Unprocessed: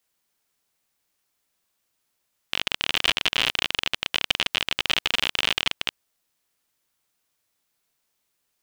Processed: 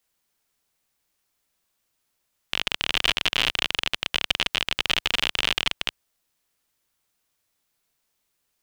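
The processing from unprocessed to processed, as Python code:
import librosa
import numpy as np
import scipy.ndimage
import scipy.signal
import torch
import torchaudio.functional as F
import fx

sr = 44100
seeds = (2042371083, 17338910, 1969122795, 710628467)

y = fx.low_shelf(x, sr, hz=66.0, db=6.5)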